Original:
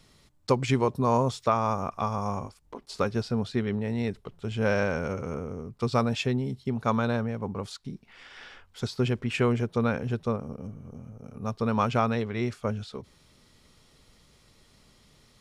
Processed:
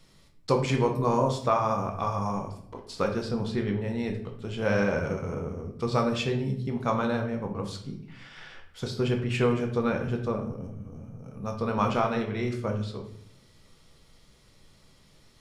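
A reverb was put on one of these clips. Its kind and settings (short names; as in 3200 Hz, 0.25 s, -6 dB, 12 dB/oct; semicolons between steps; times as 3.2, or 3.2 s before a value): shoebox room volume 130 m³, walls mixed, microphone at 0.66 m; gain -2 dB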